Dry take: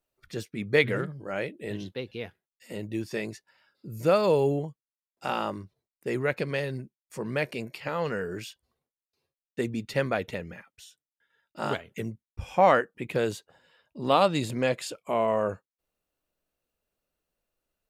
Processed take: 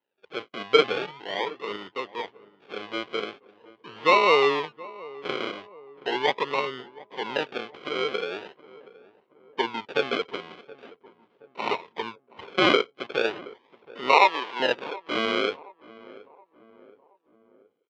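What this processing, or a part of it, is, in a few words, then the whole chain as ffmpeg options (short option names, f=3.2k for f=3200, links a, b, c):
circuit-bent sampling toy: -filter_complex "[0:a]acrusher=samples=38:mix=1:aa=0.000001:lfo=1:lforange=22.8:lforate=0.41,highpass=410,equalizer=f=420:t=q:w=4:g=5,equalizer=f=630:t=q:w=4:g=-5,equalizer=f=970:t=q:w=4:g=8,equalizer=f=2.2k:t=q:w=4:g=5,equalizer=f=3.1k:t=q:w=4:g=8,lowpass=f=4.3k:w=0.5412,lowpass=f=4.3k:w=1.3066,asettb=1/sr,asplit=3[a][b][c];[a]atrim=end=14.124[d];[b]atrim=start=14.12:end=14.6,asetpts=PTS-STARTPTS,afade=t=in:d=0.004:c=qsin,afade=t=out:st=0.476:d=0.004:c=qsin,highpass=440[e];[c]atrim=start=14.596[f];[d][e]acrossfade=d=0.004:c1=hsin:c2=qsin[g];[g][f]acrossfade=d=0.004:c1=qsin:c2=hsin,asplit=2[h][i];[i]adelay=723,lowpass=f=1.1k:p=1,volume=-19dB,asplit=2[j][k];[k]adelay=723,lowpass=f=1.1k:p=1,volume=0.52,asplit=2[l][m];[m]adelay=723,lowpass=f=1.1k:p=1,volume=0.52,asplit=2[n][o];[o]adelay=723,lowpass=f=1.1k:p=1,volume=0.52[p];[h][j][l][n][p]amix=inputs=5:normalize=0,volume=2.5dB"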